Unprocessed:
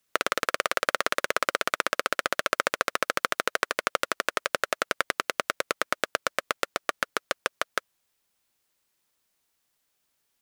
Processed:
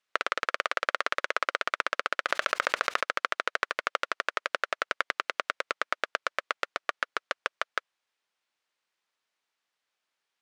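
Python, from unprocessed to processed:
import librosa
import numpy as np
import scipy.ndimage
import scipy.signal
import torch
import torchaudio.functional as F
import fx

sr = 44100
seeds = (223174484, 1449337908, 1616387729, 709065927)

y = fx.highpass(x, sr, hz=1400.0, slope=6)
y = fx.spacing_loss(y, sr, db_at_10k=22)
y = fx.env_flatten(y, sr, amount_pct=100, at=(2.28, 2.99), fade=0.02)
y = F.gain(torch.from_numpy(y), 4.5).numpy()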